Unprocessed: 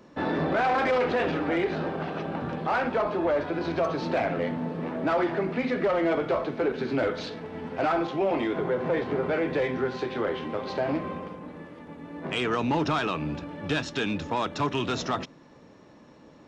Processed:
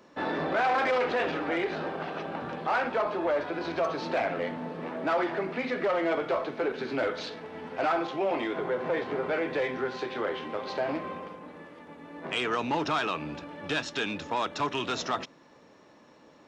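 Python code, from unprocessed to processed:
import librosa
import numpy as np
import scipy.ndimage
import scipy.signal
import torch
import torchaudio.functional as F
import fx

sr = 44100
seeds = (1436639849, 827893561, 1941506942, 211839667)

y = fx.low_shelf(x, sr, hz=260.0, db=-12.0)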